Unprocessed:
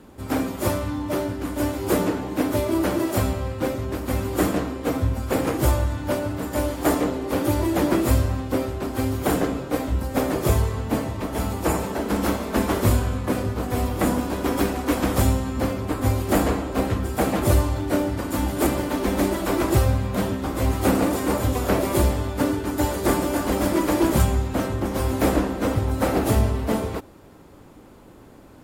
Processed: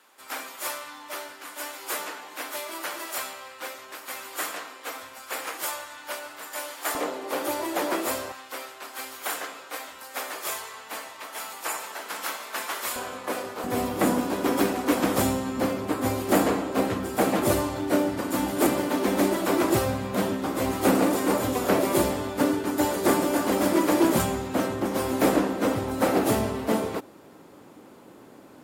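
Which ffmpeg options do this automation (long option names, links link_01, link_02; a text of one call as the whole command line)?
ffmpeg -i in.wav -af "asetnsamples=nb_out_samples=441:pad=0,asendcmd='6.95 highpass f 560;8.32 highpass f 1200;12.96 highpass f 540;13.64 highpass f 190',highpass=1200" out.wav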